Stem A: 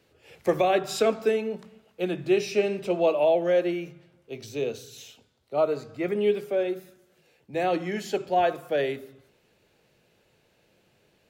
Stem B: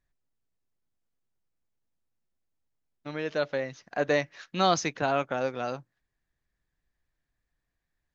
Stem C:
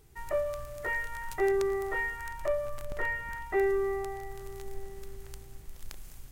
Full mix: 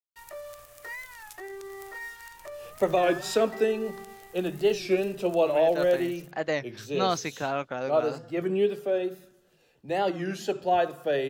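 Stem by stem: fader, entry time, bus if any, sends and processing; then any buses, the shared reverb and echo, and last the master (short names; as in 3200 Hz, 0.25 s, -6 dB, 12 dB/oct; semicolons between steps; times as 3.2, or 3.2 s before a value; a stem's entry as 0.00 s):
-1.0 dB, 2.35 s, no send, notch 2200 Hz, Q 6.7
-3.0 dB, 2.40 s, no send, dry
-4.5 dB, 0.00 s, no send, crossover distortion -48 dBFS; limiter -27.5 dBFS, peak gain reduction 9.5 dB; tilt +2.5 dB/oct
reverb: off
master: record warp 33 1/3 rpm, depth 160 cents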